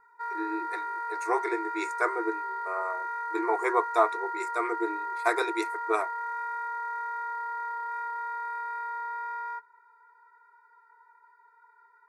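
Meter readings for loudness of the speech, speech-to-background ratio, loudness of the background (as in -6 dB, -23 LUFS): -31.0 LUFS, 3.0 dB, -34.0 LUFS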